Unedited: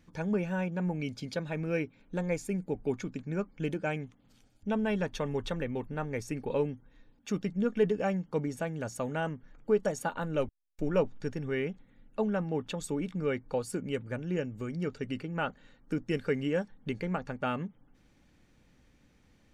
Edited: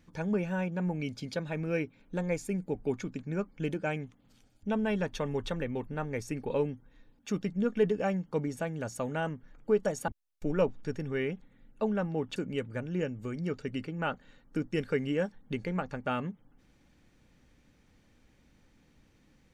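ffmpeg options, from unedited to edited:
-filter_complex "[0:a]asplit=3[s0][s1][s2];[s0]atrim=end=10.082[s3];[s1]atrim=start=10.448:end=12.732[s4];[s2]atrim=start=13.718[s5];[s3][s4]acrossfade=d=0.004:c1=hsin:c2=hsin[s6];[s6][s5]acrossfade=d=0.004:c1=hsin:c2=hsin"

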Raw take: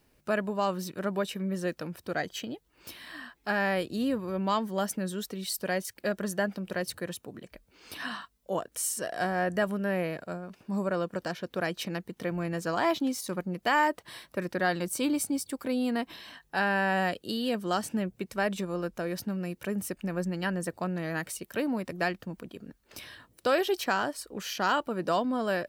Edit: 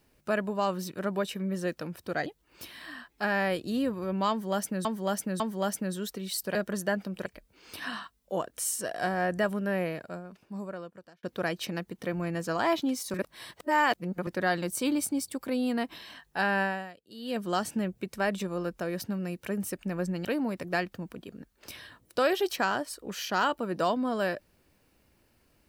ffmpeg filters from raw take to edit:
-filter_complex "[0:a]asplit=12[s0][s1][s2][s3][s4][s5][s6][s7][s8][s9][s10][s11];[s0]atrim=end=2.262[s12];[s1]atrim=start=2.518:end=5.112[s13];[s2]atrim=start=4.558:end=5.112[s14];[s3]atrim=start=4.558:end=5.712[s15];[s4]atrim=start=6.058:end=6.772[s16];[s5]atrim=start=7.438:end=11.41,asetpts=PTS-STARTPTS,afade=t=out:st=2.512:d=1.46[s17];[s6]atrim=start=11.41:end=13.322,asetpts=PTS-STARTPTS,afade=t=in:d=0.004:c=hsin[s18];[s7]atrim=start=13.318:end=14.452,asetpts=PTS-STARTPTS,areverse[s19];[s8]atrim=start=14.448:end=17.16,asetpts=PTS-STARTPTS,afade=t=out:st=2.352:d=0.36:c=qua:silence=0.0944061[s20];[s9]atrim=start=17.16:end=17.21,asetpts=PTS-STARTPTS,volume=0.0944[s21];[s10]atrim=start=17.21:end=20.432,asetpts=PTS-STARTPTS,afade=t=in:d=0.36:c=qua:silence=0.0944061[s22];[s11]atrim=start=21.528[s23];[s12][s13]acrossfade=d=0.004:c1=hsin:c2=hsin[s24];[s24][s14]acrossfade=d=0.004:c1=hsin:c2=hsin[s25];[s25][s15]acrossfade=d=0.004:c1=hsin:c2=hsin[s26];[s26][s16]acrossfade=d=0.004:c1=hsin:c2=hsin[s27];[s17][s18]concat=n=2:v=0:a=1[s28];[s27][s28]acrossfade=d=0.004:c1=hsin:c2=hsin[s29];[s29][s19]acrossfade=d=0.004:c1=hsin:c2=hsin[s30];[s20][s21][s22]concat=n=3:v=0:a=1[s31];[s30][s31]acrossfade=d=0.004:c1=hsin:c2=hsin[s32];[s32][s23]acrossfade=d=0.004:c1=hsin:c2=hsin"

